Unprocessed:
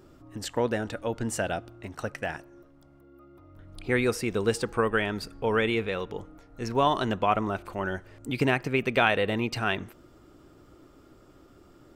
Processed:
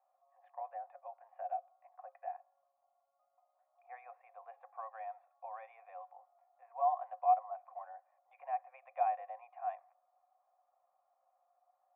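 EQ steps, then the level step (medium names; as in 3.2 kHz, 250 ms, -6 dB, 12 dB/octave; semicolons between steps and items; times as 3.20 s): cascade formant filter a; rippled Chebyshev high-pass 520 Hz, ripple 9 dB; peaking EQ 1.8 kHz +9 dB 0.31 oct; +1.0 dB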